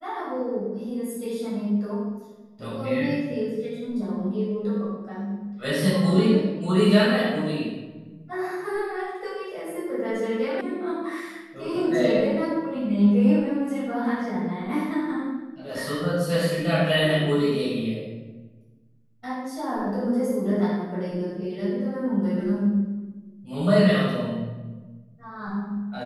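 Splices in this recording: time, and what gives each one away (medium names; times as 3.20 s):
10.61 s: sound stops dead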